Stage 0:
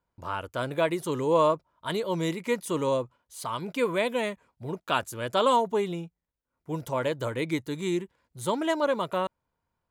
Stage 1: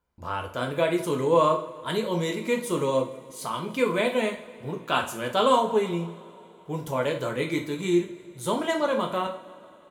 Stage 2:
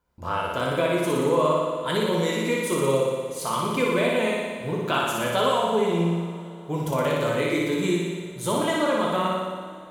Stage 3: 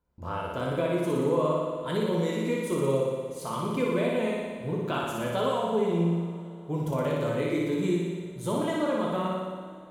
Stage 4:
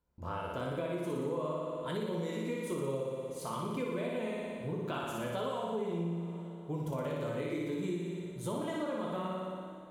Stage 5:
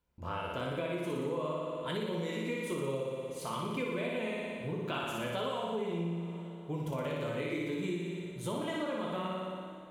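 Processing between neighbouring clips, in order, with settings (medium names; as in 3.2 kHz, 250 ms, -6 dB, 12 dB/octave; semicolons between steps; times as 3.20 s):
feedback delay 161 ms, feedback 58%, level -21 dB; reverberation, pre-delay 3 ms, DRR 1.5 dB
compression 2.5:1, threshold -26 dBFS, peak gain reduction 8 dB; on a send: flutter echo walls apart 10.1 m, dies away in 1.4 s; on the sum: trim +3 dB
tilt shelf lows +4.5 dB, about 710 Hz; trim -5.5 dB
compression 2.5:1, threshold -31 dBFS, peak gain reduction 7.5 dB; trim -3.5 dB
peaking EQ 2.6 kHz +7 dB 1.1 oct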